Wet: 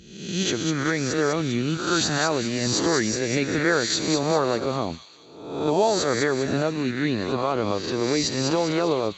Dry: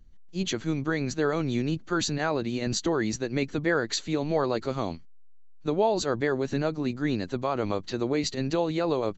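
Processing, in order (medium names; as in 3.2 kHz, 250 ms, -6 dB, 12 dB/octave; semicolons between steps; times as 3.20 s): reverse spectral sustain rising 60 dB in 0.85 s; high-pass 63 Hz; on a send: feedback echo behind a high-pass 199 ms, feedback 47%, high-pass 3.2 kHz, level -3.5 dB; on the sum: trim +2 dB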